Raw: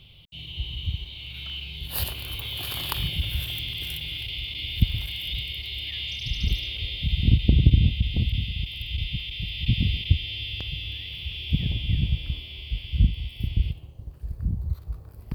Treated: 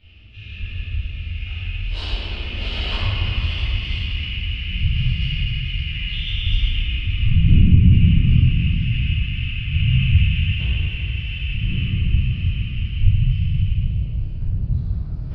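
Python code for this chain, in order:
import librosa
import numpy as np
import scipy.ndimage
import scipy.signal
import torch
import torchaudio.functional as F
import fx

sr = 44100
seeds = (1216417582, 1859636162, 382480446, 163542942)

y = fx.ladder_lowpass(x, sr, hz=5700.0, resonance_pct=35)
y = fx.peak_eq(y, sr, hz=110.0, db=5.0, octaves=0.73)
y = fx.pitch_keep_formants(y, sr, semitones=-9.5)
y = y + 10.0 ** (-17.5 / 20.0) * np.pad(y, (int(640 * sr / 1000.0), 0))[:len(y)]
y = fx.room_shoebox(y, sr, seeds[0], volume_m3=130.0, walls='hard', distance_m=2.5)
y = y * 10.0 ** (-2.0 / 20.0)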